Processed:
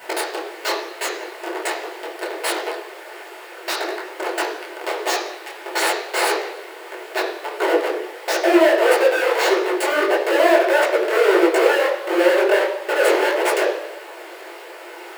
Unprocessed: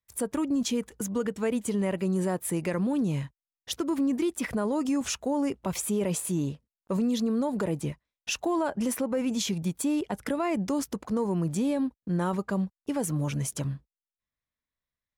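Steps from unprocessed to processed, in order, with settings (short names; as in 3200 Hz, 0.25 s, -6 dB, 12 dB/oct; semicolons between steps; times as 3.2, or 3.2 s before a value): CVSD 64 kbps; elliptic band-stop 1800–3800 Hz, stop band 40 dB; band shelf 1200 Hz -9 dB; in parallel at +2 dB: limiter -27 dBFS, peak gain reduction 8 dB; on the sum: transient shaper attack +6 dB, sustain -6 dB; high-pass sweep 3900 Hz -> 560 Hz, 6.78–8.03; Schmitt trigger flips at -31 dBFS; added noise pink -49 dBFS; brick-wall FIR high-pass 330 Hz; reverb RT60 0.90 s, pre-delay 3 ms, DRR -2.5 dB; detuned doubles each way 54 cents; gain +8 dB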